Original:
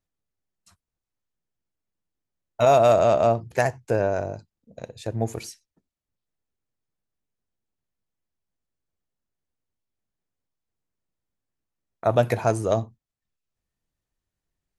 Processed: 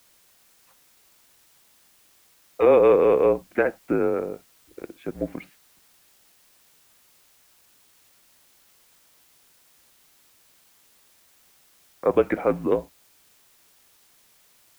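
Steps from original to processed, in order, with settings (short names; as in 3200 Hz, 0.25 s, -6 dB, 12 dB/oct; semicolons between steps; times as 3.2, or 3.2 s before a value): mistuned SSB -160 Hz 320–2900 Hz; requantised 10-bit, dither triangular; gain +1 dB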